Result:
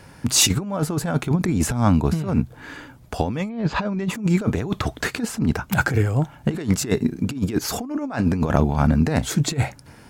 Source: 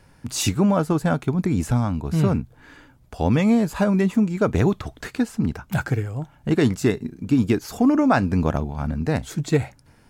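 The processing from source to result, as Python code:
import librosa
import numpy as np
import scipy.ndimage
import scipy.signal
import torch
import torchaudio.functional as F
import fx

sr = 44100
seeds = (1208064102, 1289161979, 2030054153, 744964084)

y = fx.highpass(x, sr, hz=79.0, slope=6)
y = fx.over_compress(y, sr, threshold_db=-24.0, ratio=-0.5)
y = fx.lowpass(y, sr, hz=fx.line((3.48, 3300.0), (4.08, 7500.0)), slope=24, at=(3.48, 4.08), fade=0.02)
y = y * 10.0 ** (5.0 / 20.0)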